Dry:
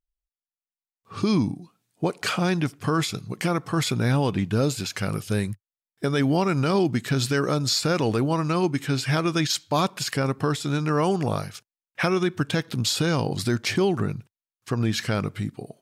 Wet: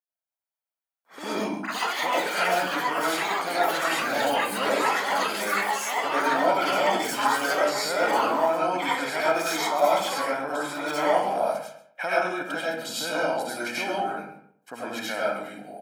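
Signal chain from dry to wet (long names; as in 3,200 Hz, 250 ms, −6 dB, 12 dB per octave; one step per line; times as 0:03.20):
high-pass filter 320 Hz 24 dB per octave
parametric band 4,700 Hz −10 dB 2 octaves
comb filter 1.3 ms, depth 79%
comb and all-pass reverb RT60 0.65 s, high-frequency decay 0.55×, pre-delay 55 ms, DRR −7.5 dB
delay with pitch and tempo change per echo 307 ms, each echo +6 semitones, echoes 3
on a send: single-tap delay 135 ms −16.5 dB
on the sum: level −6 dB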